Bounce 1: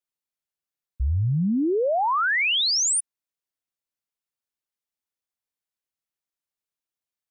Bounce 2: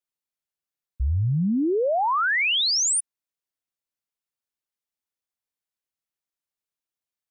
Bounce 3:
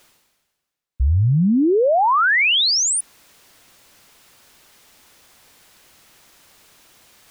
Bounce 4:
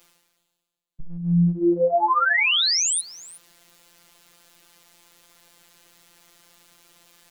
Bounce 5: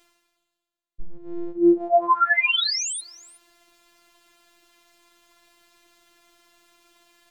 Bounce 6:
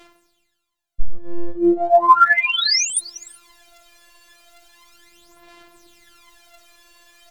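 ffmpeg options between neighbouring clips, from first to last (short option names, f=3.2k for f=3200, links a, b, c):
-af anull
-af "highshelf=f=7.4k:g=-7,areverse,acompressor=mode=upward:threshold=-31dB:ratio=2.5,areverse,volume=6.5dB"
-af "afftfilt=real='hypot(re,im)*cos(PI*b)':imag='0':win_size=1024:overlap=0.75,aecho=1:1:366:0.1"
-af "aemphasis=mode=reproduction:type=cd,afftfilt=real='hypot(re,im)*cos(PI*b)':imag='0':win_size=512:overlap=0.75,volume=3.5dB"
-af "aphaser=in_gain=1:out_gain=1:delay=1.8:decay=0.72:speed=0.36:type=sinusoidal,volume=5dB"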